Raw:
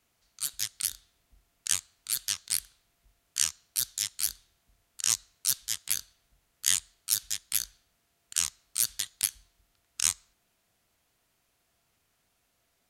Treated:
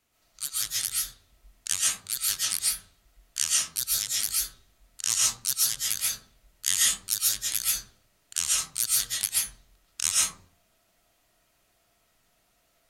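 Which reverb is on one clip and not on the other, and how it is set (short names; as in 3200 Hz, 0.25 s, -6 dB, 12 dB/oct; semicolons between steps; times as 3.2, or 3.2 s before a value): digital reverb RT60 0.51 s, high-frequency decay 0.35×, pre-delay 95 ms, DRR -5.5 dB; gain -1 dB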